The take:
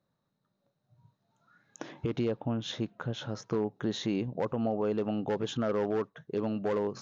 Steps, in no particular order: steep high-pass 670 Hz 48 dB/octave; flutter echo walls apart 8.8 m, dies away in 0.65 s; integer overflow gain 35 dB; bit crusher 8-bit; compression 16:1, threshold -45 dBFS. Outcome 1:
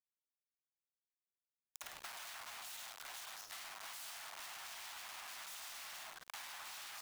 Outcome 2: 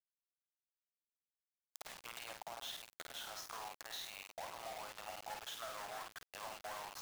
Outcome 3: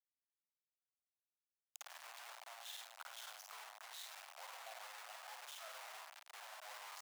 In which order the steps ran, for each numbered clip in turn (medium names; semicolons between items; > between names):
flutter echo > integer overflow > steep high-pass > bit crusher > compression; steep high-pass > compression > integer overflow > flutter echo > bit crusher; flutter echo > compression > bit crusher > integer overflow > steep high-pass